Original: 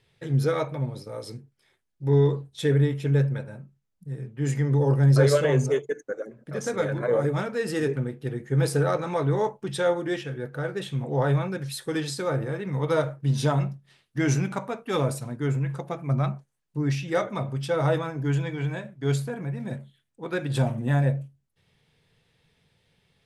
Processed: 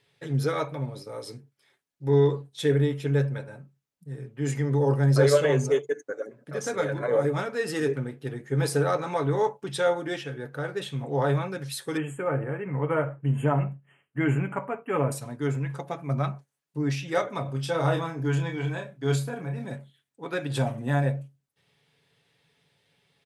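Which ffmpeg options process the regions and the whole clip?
-filter_complex "[0:a]asettb=1/sr,asplit=3[s0][s1][s2];[s0]atrim=end=11.974[s3];[s1]atrim=start=11.97:end=15.12,asetpts=PTS-STARTPTS,afade=t=in:d=0.004:c=qsin,afade=t=out:st=3.146:d=0.004:c=qsin,asuperstop=centerf=4700:order=20:qfactor=1.3,bass=f=250:g=2,treble=f=4000:g=-12[s4];[s2]atrim=start=15.116[s5];[s3][s4]acrossfade=d=0.004:c1=hsin:c2=qsin[s6];[s6][s5]acrossfade=d=0.004:c1=qsin:c2=hsin,asettb=1/sr,asplit=3[s7][s8][s9];[s7]atrim=end=17.434[s10];[s8]atrim=start=17.43:end=19.65,asetpts=PTS-STARTPTS,afade=t=in:d=0.004:c=qsin,afade=t=out:st=2.216:d=0.004:c=qsin,equalizer=f=2000:w=5.6:g=-3.5,asplit=2[s11][s12];[s12]adelay=30,volume=0.501[s13];[s11][s13]amix=inputs=2:normalize=0,atrim=end_sample=97902[s14];[s9]atrim=start=19.646[s15];[s10][s14]acrossfade=d=0.004:c1=hsin:c2=qsin[s16];[s16][s15]acrossfade=d=0.004:c1=qsin:c2=hsin,highpass=f=240:p=1,aecho=1:1:7.1:0.38"

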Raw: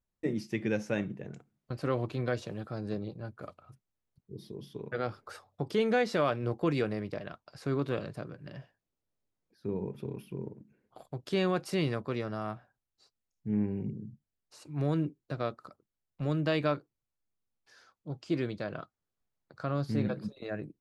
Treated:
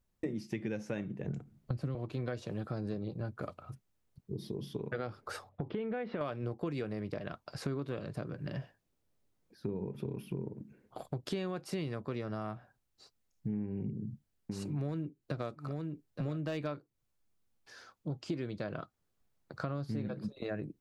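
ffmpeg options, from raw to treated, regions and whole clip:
-filter_complex "[0:a]asettb=1/sr,asplit=3[s0][s1][s2];[s0]atrim=end=1.274[s3];[s1]atrim=start=1.27:end=1.95,asetpts=PTS-STARTPTS,afade=t=in:d=0.004:c=qsin,afade=t=out:st=0.676:d=0.004:c=qsin,lowshelf=f=280:g=11.5,acrossover=split=230|3000[s4][s5][s6];[s5]acompressor=threshold=0.01:ratio=2:attack=3.2:release=140:knee=2.83:detection=peak[s7];[s4][s7][s6]amix=inputs=3:normalize=0[s8];[s2]atrim=start=1.946[s9];[s3][s8]acrossfade=d=0.004:c1=hsin:c2=qsin[s10];[s10][s9]acrossfade=d=0.004:c1=qsin:c2=hsin,asettb=1/sr,asplit=3[s11][s12][s13];[s11]atrim=end=5.494[s14];[s12]atrim=start=5.49:end=6.21,asetpts=PTS-STARTPTS,afade=t=in:d=0.004:c=qsin,afade=t=out:st=0.716:d=0.004:c=qsin,lowpass=f=3100:w=0.5412,lowpass=f=3100:w=1.3066,aemphasis=mode=reproduction:type=50fm,acompressor=threshold=0.0158:ratio=2:attack=3.2:release=140:knee=1:detection=peak[s15];[s13]atrim=start=6.206[s16];[s14][s15]acrossfade=d=0.004:c1=hsin:c2=qsin[s17];[s17][s16]acrossfade=d=0.004:c1=qsin:c2=hsin,asettb=1/sr,asplit=3[s18][s19][s20];[s18]atrim=end=13.624[s21];[s19]atrim=start=13.62:end=16.67,asetpts=PTS-STARTPTS,afade=t=in:d=0.004:c=qsin,afade=t=out:st=3.046:d=0.004:c=qsin,volume=10.6,asoftclip=hard,volume=0.0944,aecho=1:1:873:0.224,atrim=end_sample=134505[s22];[s20]atrim=start=16.666[s23];[s21][s22]acrossfade=d=0.004:c1=hsin:c2=qsin[s24];[s24][s23]acrossfade=d=0.004:c1=qsin:c2=hsin,lowshelf=f=460:g=3.5,acompressor=threshold=0.01:ratio=6,volume=1.88"

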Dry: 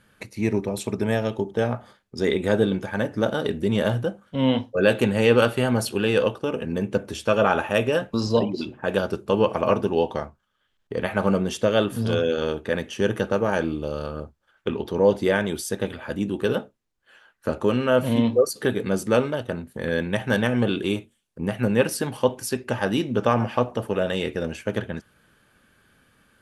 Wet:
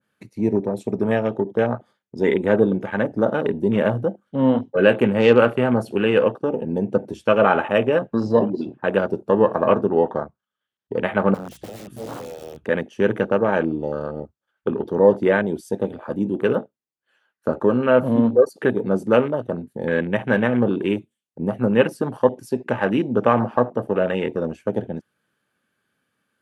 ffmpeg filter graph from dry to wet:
-filter_complex "[0:a]asettb=1/sr,asplit=3[s0][s1][s2];[s0]atrim=end=11.344[s3];[s1]atrim=start=11.34:end=12.66,asetpts=PTS-STARTPTS,afade=t=in:d=0.004:c=qsin,afade=t=out:st=1.316:d=0.004:c=qsin,equalizer=f=360:t=o:w=2.4:g=-13,aeval=exprs='(mod(22.4*val(0)+1,2)-1)/22.4':c=same,aeval=exprs='val(0)+0.00355*(sin(2*PI*60*n/s)+sin(2*PI*2*60*n/s)/2+sin(2*PI*3*60*n/s)/3+sin(2*PI*4*60*n/s)/4+sin(2*PI*5*60*n/s)/5)':c=same[s4];[s2]atrim=start=12.656[s5];[s3][s4]acrossfade=d=0.004:c1=hsin:c2=qsin[s6];[s6][s5]acrossfade=d=0.004:c1=qsin:c2=hsin,afwtdn=0.0251,highpass=140,adynamicequalizer=threshold=0.0158:dfrequency=1800:dqfactor=0.7:tfrequency=1800:tqfactor=0.7:attack=5:release=100:ratio=0.375:range=2.5:mode=cutabove:tftype=highshelf,volume=1.58"

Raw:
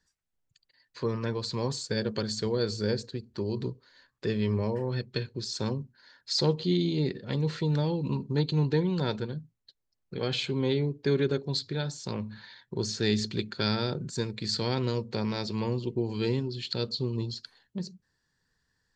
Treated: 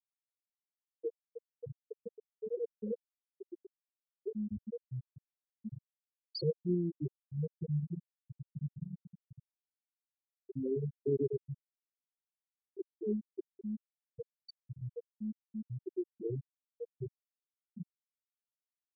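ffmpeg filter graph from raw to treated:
-filter_complex "[0:a]asettb=1/sr,asplit=3[s0][s1][s2];[s0]atrim=end=8.034[s3];[s1]atrim=start=8.03:end=10.36,asetpts=PTS-STARTPTS,afade=t=in:d=0.004:c=qsin,afade=t=out:st=2.326:d=0.004:c=qsin,equalizer=f=2500:w=0.7:g=-14,acompressor=threshold=0.0355:ratio=5:attack=3.2:release=140:knee=1:detection=peak,aecho=1:1:62|163|257|530|705:0.119|0.562|0.398|0.237|0.237,atrim=end_sample=102753[s4];[s2]atrim=start=10.356[s5];[s3][s4]acrossfade=d=0.004:c1=hsin:c2=qsin[s6];[s6][s5]acrossfade=d=0.004:c1=qsin:c2=hsin,bandreject=f=156.6:t=h:w=4,bandreject=f=313.2:t=h:w=4,acrossover=split=140|3000[s7][s8][s9];[s7]acompressor=threshold=0.01:ratio=1.5[s10];[s10][s8][s9]amix=inputs=3:normalize=0,afftfilt=real='re*gte(hypot(re,im),0.316)':imag='im*gte(hypot(re,im),0.316)':win_size=1024:overlap=0.75,volume=0.631"

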